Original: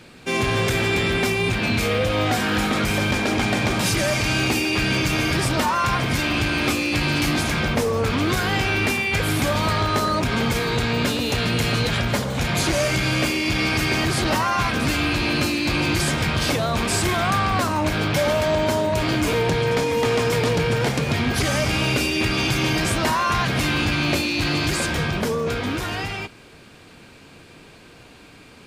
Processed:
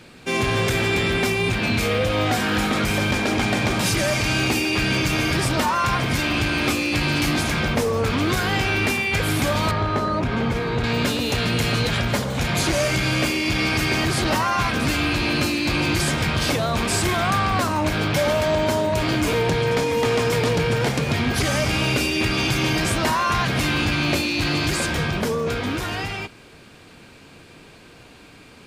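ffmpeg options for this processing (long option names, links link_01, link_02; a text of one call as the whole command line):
ffmpeg -i in.wav -filter_complex "[0:a]asettb=1/sr,asplit=3[link_01][link_02][link_03];[link_01]atrim=end=9.714[link_04];[link_02]atrim=start=9.71:end=10.84,asetpts=PTS-STARTPTS,afade=type=in:duration=0.004:curve=qsin,afade=type=out:start_time=1.126:duration=0.004:curve=qsin,lowpass=frequency=1600:poles=1[link_05];[link_03]atrim=start=10.836[link_06];[link_04][link_05]acrossfade=duration=0.004:curve1=hsin:curve2=qsin[link_07];[link_07][link_06]acrossfade=duration=0.004:curve1=qsin:curve2=hsin" out.wav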